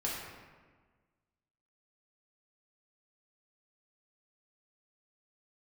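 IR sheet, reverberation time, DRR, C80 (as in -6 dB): 1.5 s, -5.5 dB, 2.5 dB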